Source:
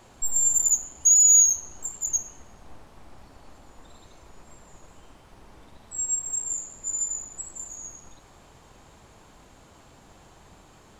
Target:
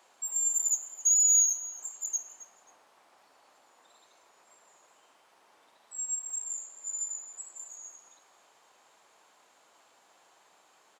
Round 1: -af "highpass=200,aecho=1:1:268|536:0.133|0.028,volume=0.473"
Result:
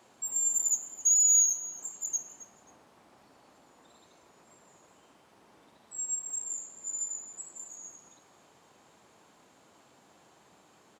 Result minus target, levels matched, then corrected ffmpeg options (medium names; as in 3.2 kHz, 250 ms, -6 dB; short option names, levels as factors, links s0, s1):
250 Hz band +12.5 dB
-af "highpass=620,aecho=1:1:268|536:0.133|0.028,volume=0.473"